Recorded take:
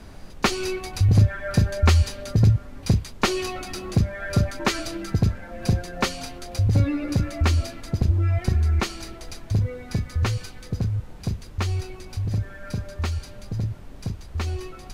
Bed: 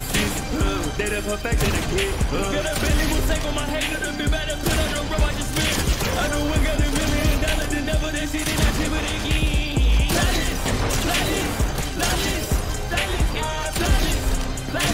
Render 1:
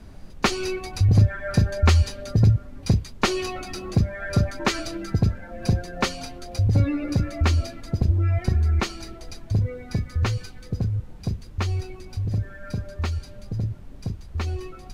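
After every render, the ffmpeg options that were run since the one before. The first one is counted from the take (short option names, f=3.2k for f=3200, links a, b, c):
-af "afftdn=nr=6:nf=-41"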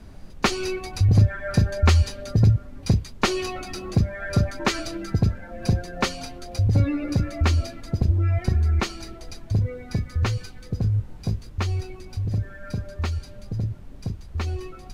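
-filter_complex "[0:a]asettb=1/sr,asplit=3[a][b][c];[a]atrim=end=10.824[d];[b]atrim=start=10.82:end=11.5,asetpts=PTS-STARTPTS,afade=t=in:d=0.004:c=qsin,afade=t=out:st=0.676:d=0.004:c=qsin,asplit=2[e][f];[f]adelay=19,volume=-5.5dB[g];[e][g]amix=inputs=2:normalize=0,atrim=end_sample=29988[h];[c]atrim=start=11.496[i];[d][h]acrossfade=d=0.004:c1=hsin:c2=qsin[j];[j][i]acrossfade=d=0.004:c1=qsin:c2=hsin"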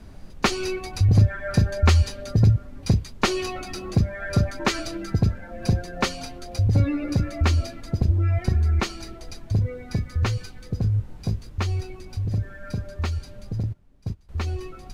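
-filter_complex "[0:a]asettb=1/sr,asplit=3[a][b][c];[a]atrim=end=13.634[d];[b]atrim=start=13.63:end=14.29,asetpts=PTS-STARTPTS,afade=t=in:d=0.004:c=qsin,afade=t=out:st=0.656:d=0.004:c=qsin,agate=range=-16dB:threshold=-30dB:ratio=16:release=100:detection=peak[e];[c]atrim=start=14.286[f];[d][e]acrossfade=d=0.004:c1=hsin:c2=qsin[g];[g][f]acrossfade=d=0.004:c1=qsin:c2=hsin"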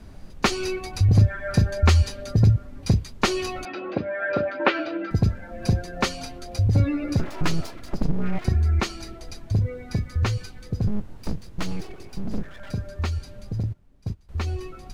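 -filter_complex "[0:a]asettb=1/sr,asplit=3[a][b][c];[a]atrim=end=3.654[d];[b]atrim=start=3.65:end=5.11,asetpts=PTS-STARTPTS,afade=t=in:d=0.004:c=qsin,afade=t=out:st=1.456:d=0.004:c=qsin,highpass=290,equalizer=f=300:t=q:w=4:g=8,equalizer=f=550:t=q:w=4:g=10,equalizer=f=860:t=q:w=4:g=4,equalizer=f=1.5k:t=q:w=4:g=7,equalizer=f=2.6k:t=q:w=4:g=4,lowpass=f=3.4k:w=0.5412,lowpass=f=3.4k:w=1.3066[e];[c]atrim=start=5.106[f];[d][e]acrossfade=d=0.004:c1=hsin:c2=qsin[g];[g][f]acrossfade=d=0.004:c1=qsin:c2=hsin,asettb=1/sr,asplit=3[h][i][j];[h]atrim=end=7.194[k];[i]atrim=start=7.19:end=8.45,asetpts=PTS-STARTPTS,afade=t=in:d=0.004:c=qsin,afade=t=out:st=1.256:d=0.004:c=qsin,aeval=exprs='abs(val(0))':c=same[l];[j]atrim=start=8.446[m];[k][l]acrossfade=d=0.004:c1=hsin:c2=qsin[n];[n][m]acrossfade=d=0.004:c1=qsin:c2=hsin,asettb=1/sr,asplit=3[o][p][q];[o]atrim=end=10.874[r];[p]atrim=start=10.87:end=12.71,asetpts=PTS-STARTPTS,afade=t=in:d=0.004:c=qsin,afade=t=out:st=1.836:d=0.004:c=qsin,aeval=exprs='abs(val(0))':c=same[s];[q]atrim=start=12.706[t];[r][s]acrossfade=d=0.004:c1=hsin:c2=qsin[u];[u][t]acrossfade=d=0.004:c1=qsin:c2=hsin"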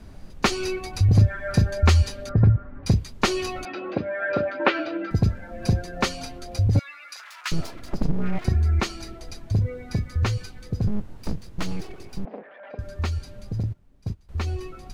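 -filter_complex "[0:a]asettb=1/sr,asplit=3[a][b][c];[a]atrim=end=2.294[d];[b]atrim=start=2.29:end=2.86,asetpts=PTS-STARTPTS,afade=t=in:d=0.004:c=qsin,afade=t=out:st=0.566:d=0.004:c=qsin,lowpass=f=1.5k:t=q:w=2.1[e];[c]atrim=start=2.856[f];[d][e]acrossfade=d=0.004:c1=hsin:c2=qsin[g];[g][f]acrossfade=d=0.004:c1=qsin:c2=hsin,asettb=1/sr,asplit=3[h][i][j];[h]atrim=end=6.794[k];[i]atrim=start=6.79:end=7.52,asetpts=PTS-STARTPTS,afade=t=in:d=0.004:c=qsin,afade=t=out:st=0.726:d=0.004:c=qsin,highpass=f=1.2k:w=0.5412,highpass=f=1.2k:w=1.3066[l];[j]atrim=start=7.516[m];[k][l]acrossfade=d=0.004:c1=hsin:c2=qsin[n];[n][m]acrossfade=d=0.004:c1=qsin:c2=hsin,asettb=1/sr,asplit=3[o][p][q];[o]atrim=end=12.254[r];[p]atrim=start=12.25:end=12.79,asetpts=PTS-STARTPTS,afade=t=in:d=0.004:c=qsin,afade=t=out:st=0.536:d=0.004:c=qsin,highpass=f=320:w=0.5412,highpass=f=320:w=1.3066,equalizer=f=340:t=q:w=4:g=-8,equalizer=f=530:t=q:w=4:g=5,equalizer=f=760:t=q:w=4:g=5,equalizer=f=1.4k:t=q:w=4:g=-5,lowpass=f=2.4k:w=0.5412,lowpass=f=2.4k:w=1.3066[s];[q]atrim=start=12.786[t];[r][s]acrossfade=d=0.004:c1=hsin:c2=qsin[u];[u][t]acrossfade=d=0.004:c1=qsin:c2=hsin"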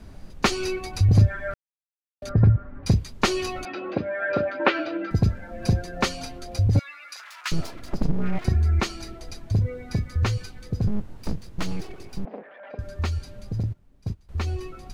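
-filter_complex "[0:a]asplit=3[a][b][c];[a]atrim=end=1.54,asetpts=PTS-STARTPTS,afade=t=out:st=1.536:d=0.004:c=hsin[d];[b]atrim=start=1.54:end=2.22,asetpts=PTS-STARTPTS,volume=0[e];[c]atrim=start=2.22,asetpts=PTS-STARTPTS,afade=t=in:d=0.004:c=hsin[f];[d][e][f]concat=n=3:v=0:a=1"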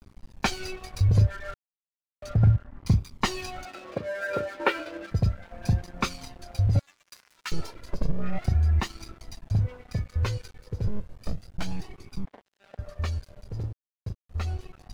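-af "flanger=delay=0.8:depth=1.5:regen=23:speed=0.33:shape=triangular,aeval=exprs='sgn(val(0))*max(abs(val(0))-0.00668,0)':c=same"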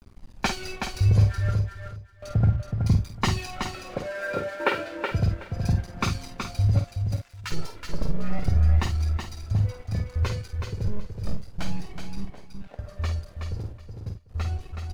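-filter_complex "[0:a]asplit=2[a][b];[b]adelay=50,volume=-7.5dB[c];[a][c]amix=inputs=2:normalize=0,aecho=1:1:373|746|1119:0.501|0.0902|0.0162"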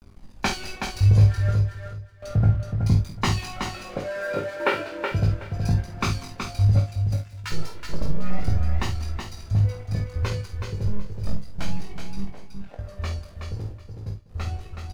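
-filter_complex "[0:a]asplit=2[a][b];[b]adelay=20,volume=-5dB[c];[a][c]amix=inputs=2:normalize=0,aecho=1:1:195:0.0841"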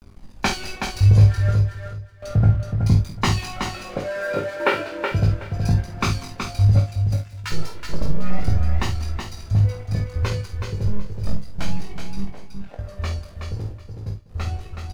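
-af "volume=3dB"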